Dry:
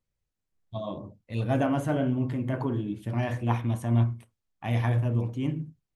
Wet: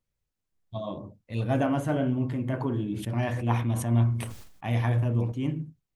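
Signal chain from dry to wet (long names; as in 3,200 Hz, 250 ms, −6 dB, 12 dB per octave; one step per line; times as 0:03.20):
0:02.64–0:05.32: level that may fall only so fast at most 62 dB per second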